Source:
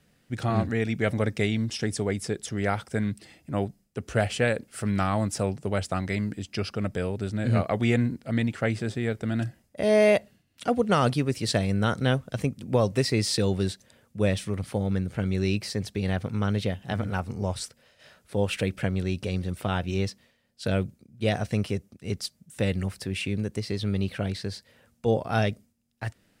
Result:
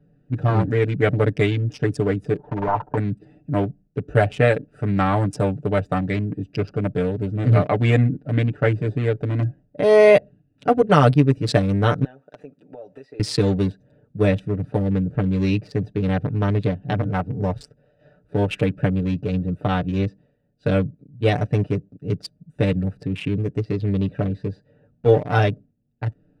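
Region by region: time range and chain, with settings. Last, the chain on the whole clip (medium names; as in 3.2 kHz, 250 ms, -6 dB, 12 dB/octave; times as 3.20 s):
2.37–2.97 s: block-companded coder 3-bit + compression 4:1, threshold -27 dBFS + resonant low-pass 950 Hz, resonance Q 11
12.04–13.20 s: high-pass 690 Hz + compression 4:1, threshold -39 dBFS
whole clip: local Wiener filter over 41 samples; treble shelf 4.4 kHz -11.5 dB; comb 6.8 ms, depth 87%; trim +6 dB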